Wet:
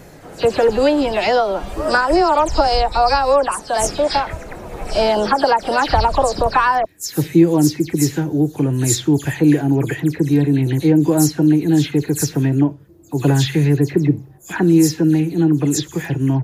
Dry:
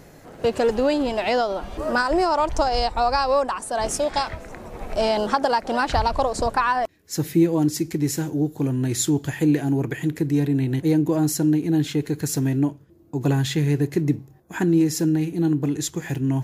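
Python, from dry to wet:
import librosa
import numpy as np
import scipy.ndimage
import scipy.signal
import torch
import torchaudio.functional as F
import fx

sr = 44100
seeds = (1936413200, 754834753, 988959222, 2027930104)

y = fx.spec_delay(x, sr, highs='early', ms=105)
y = y * 10.0 ** (6.0 / 20.0)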